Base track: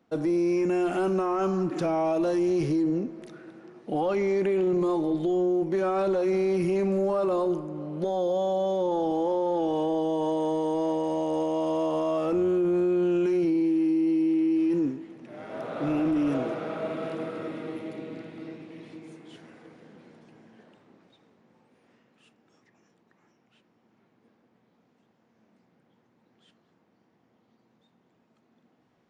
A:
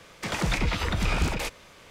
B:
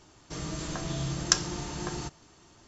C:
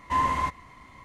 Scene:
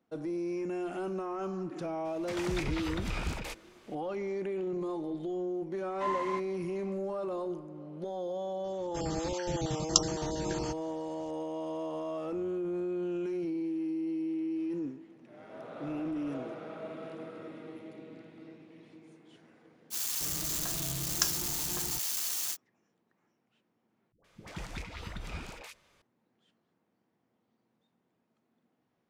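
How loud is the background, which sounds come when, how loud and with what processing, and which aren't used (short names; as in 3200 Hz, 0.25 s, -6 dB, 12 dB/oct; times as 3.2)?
base track -10 dB
2.05 add A -9.5 dB
5.9 add C -9 dB + BPF 260–7200 Hz
8.64 add B -1 dB + random spectral dropouts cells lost 32%
19.9 add B -7 dB, fades 0.05 s + switching spikes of -17.5 dBFS
24.12 replace with A -15.5 dB + dispersion highs, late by 0.125 s, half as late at 530 Hz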